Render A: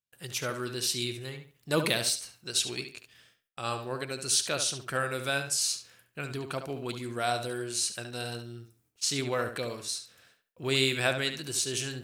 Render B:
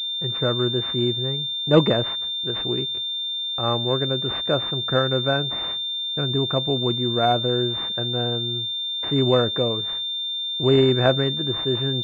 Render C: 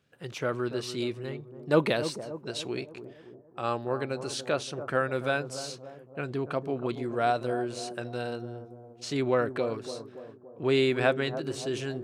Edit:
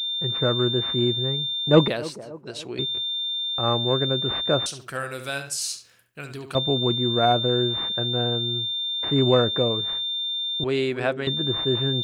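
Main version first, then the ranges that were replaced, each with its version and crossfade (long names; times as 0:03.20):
B
0:01.88–0:02.79: punch in from C
0:04.66–0:06.55: punch in from A
0:10.64–0:11.27: punch in from C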